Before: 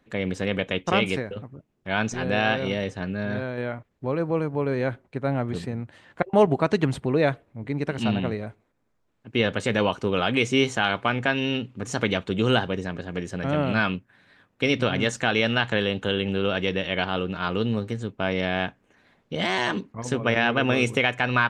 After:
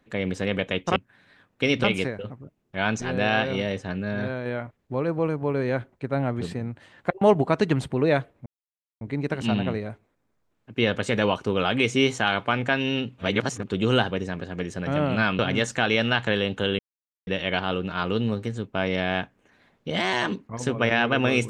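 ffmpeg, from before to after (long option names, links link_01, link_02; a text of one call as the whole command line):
ffmpeg -i in.wav -filter_complex "[0:a]asplit=9[link_01][link_02][link_03][link_04][link_05][link_06][link_07][link_08][link_09];[link_01]atrim=end=0.962[link_10];[link_02]atrim=start=13.958:end=14.842[link_11];[link_03]atrim=start=0.958:end=7.58,asetpts=PTS-STARTPTS,afade=type=out:start_time=6.618:duration=0.004:curve=hsin,apad=pad_dur=0.55[link_12];[link_04]atrim=start=7.58:end=11.752,asetpts=PTS-STARTPTS,afade=type=in:duration=0.004:curve=hsin[link_13];[link_05]atrim=start=11.748:end=12.252,asetpts=PTS-STARTPTS,areverse[link_14];[link_06]atrim=start=12.248:end=13.962[link_15];[link_07]atrim=start=14.838:end=16.24,asetpts=PTS-STARTPTS,afade=type=out:start_time=1.398:duration=0.004:curve=hsin[link_16];[link_08]atrim=start=16.24:end=16.72,asetpts=PTS-STARTPTS,volume=0[link_17];[link_09]atrim=start=16.72,asetpts=PTS-STARTPTS,afade=type=in:duration=0.004:curve=hsin[link_18];[link_10][link_11]acrossfade=duration=0.004:curve1=hsin:curve2=hsin[link_19];[link_12][link_13]concat=n=2:v=0:a=1[link_20];[link_19][link_20]acrossfade=duration=0.004:curve1=hsin:curve2=hsin[link_21];[link_21][link_14]acrossfade=duration=0.004:curve1=hsin:curve2=hsin[link_22];[link_22][link_15]acrossfade=duration=0.004:curve1=hsin:curve2=hsin[link_23];[link_16][link_17][link_18]concat=n=3:v=0:a=1[link_24];[link_23][link_24]acrossfade=duration=0.004:curve1=hsin:curve2=hsin" out.wav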